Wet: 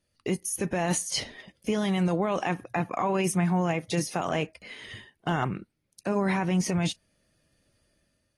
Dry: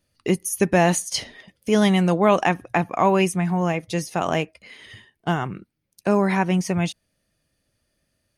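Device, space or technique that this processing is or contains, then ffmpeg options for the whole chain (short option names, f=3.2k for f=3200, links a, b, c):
low-bitrate web radio: -filter_complex "[0:a]asplit=3[a][b][c];[a]afade=t=out:st=2.41:d=0.02[d];[b]highpass=82,afade=t=in:st=2.41:d=0.02,afade=t=out:st=4.34:d=0.02[e];[c]afade=t=in:st=4.34:d=0.02[f];[d][e][f]amix=inputs=3:normalize=0,dynaudnorm=f=170:g=7:m=7dB,alimiter=limit=-12.5dB:level=0:latency=1:release=25,volume=-5dB" -ar 32000 -c:a aac -b:a 32k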